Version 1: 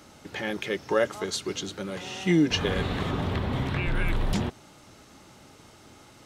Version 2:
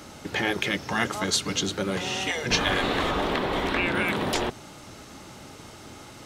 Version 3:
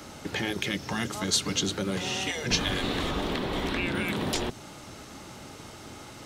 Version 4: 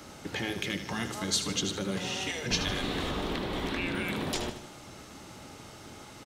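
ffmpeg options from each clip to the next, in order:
-af "afftfilt=real='re*lt(hypot(re,im),0.178)':imag='im*lt(hypot(re,im),0.178)':win_size=1024:overlap=0.75,volume=2.37"
-filter_complex "[0:a]acrossover=split=340|3000[s0][s1][s2];[s1]acompressor=threshold=0.0224:ratio=6[s3];[s0][s3][s2]amix=inputs=3:normalize=0"
-af "aecho=1:1:77|154|231|308|385:0.316|0.152|0.0729|0.035|0.0168,volume=0.668"

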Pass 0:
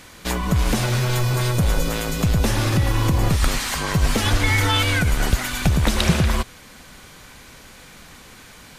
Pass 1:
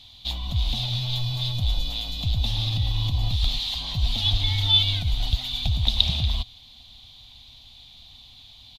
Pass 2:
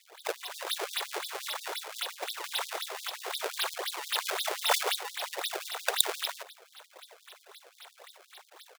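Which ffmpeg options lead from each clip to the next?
-af "firequalizer=gain_entry='entry(110,0);entry(170,-15);entry(250,-10);entry(410,-27);entry(720,-6);entry(1500,-25);entry(3600,13);entry(5400,-8);entry(8300,-19);entry(13000,-13)':delay=0.05:min_phase=1,volume=0.631"
-af "acrusher=samples=27:mix=1:aa=0.000001:lfo=1:lforange=43.2:lforate=3.8,afftfilt=real='re*gte(b*sr/1024,340*pow(3500/340,0.5+0.5*sin(2*PI*5.7*pts/sr)))':imag='im*gte(b*sr/1024,340*pow(3500/340,0.5+0.5*sin(2*PI*5.7*pts/sr)))':win_size=1024:overlap=0.75"

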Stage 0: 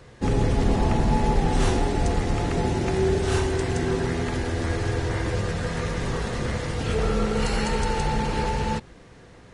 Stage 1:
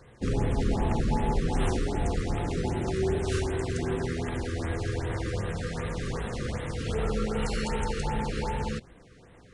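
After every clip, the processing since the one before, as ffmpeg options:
-af "afftfilt=real='re*(1-between(b*sr/1024,750*pow(5900/750,0.5+0.5*sin(2*PI*2.6*pts/sr))/1.41,750*pow(5900/750,0.5+0.5*sin(2*PI*2.6*pts/sr))*1.41))':imag='im*(1-between(b*sr/1024,750*pow(5900/750,0.5+0.5*sin(2*PI*2.6*pts/sr))/1.41,750*pow(5900/750,0.5+0.5*sin(2*PI*2.6*pts/sr))*1.41))':win_size=1024:overlap=0.75,volume=0.562"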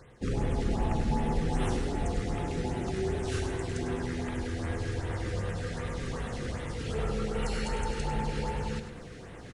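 -af "areverse,acompressor=mode=upward:threshold=0.0282:ratio=2.5,areverse,aecho=1:1:101|202|303|404|505:0.355|0.156|0.0687|0.0302|0.0133,volume=0.708"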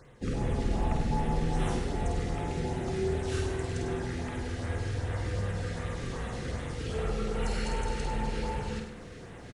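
-filter_complex "[0:a]asplit=2[s0][s1];[s1]adelay=50,volume=0.562[s2];[s0][s2]amix=inputs=2:normalize=0,volume=0.841"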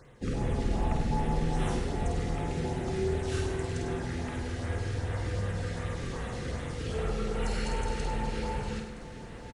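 -af "aecho=1:1:968:0.15"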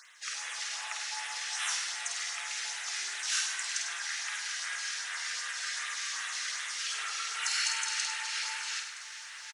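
-af "highpass=f=1400:w=0.5412,highpass=f=1400:w=1.3066,equalizer=f=5900:t=o:w=0.82:g=9,volume=2.51"

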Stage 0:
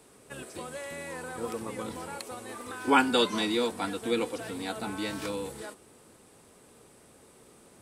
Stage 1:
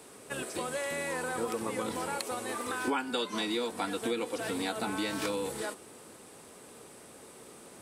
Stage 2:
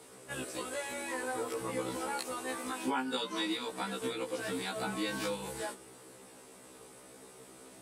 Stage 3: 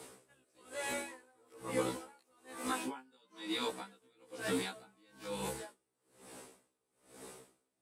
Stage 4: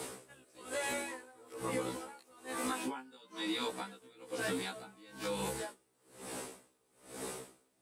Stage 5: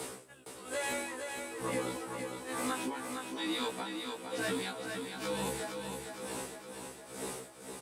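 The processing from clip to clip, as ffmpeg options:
-af "lowshelf=f=120:g=-11,acompressor=threshold=0.0178:ratio=8,volume=2"
-af "afftfilt=real='re*1.73*eq(mod(b,3),0)':imag='im*1.73*eq(mod(b,3),0)':win_size=2048:overlap=0.75"
-filter_complex "[0:a]acrossover=split=5600[s0][s1];[s1]asoftclip=type=tanh:threshold=0.0158[s2];[s0][s2]amix=inputs=2:normalize=0,aeval=exprs='val(0)*pow(10,-36*(0.5-0.5*cos(2*PI*1.1*n/s))/20)':c=same,volume=1.41"
-af "acompressor=threshold=0.00631:ratio=5,volume=2.99"
-filter_complex "[0:a]aecho=1:1:462|924|1386|1848|2310|2772|3234|3696:0.501|0.296|0.174|0.103|0.0607|0.0358|0.0211|0.0125,asplit=2[s0][s1];[s1]asoftclip=type=tanh:threshold=0.0133,volume=0.282[s2];[s0][s2]amix=inputs=2:normalize=0"

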